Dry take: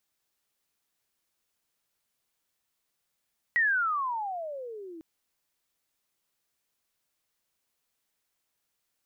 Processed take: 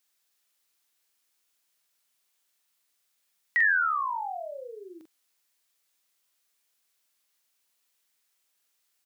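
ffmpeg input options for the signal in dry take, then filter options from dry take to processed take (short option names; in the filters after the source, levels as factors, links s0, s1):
-f lavfi -i "aevalsrc='pow(10,(-20.5-20.5*t/1.45)/20)*sin(2*PI*1940*1.45/(-31.5*log(2)/12)*(exp(-31.5*log(2)/12*t/1.45)-1))':d=1.45:s=44100"
-filter_complex "[0:a]highpass=180,tiltshelf=f=1200:g=-4.5,asplit=2[s0][s1];[s1]adelay=44,volume=0.596[s2];[s0][s2]amix=inputs=2:normalize=0"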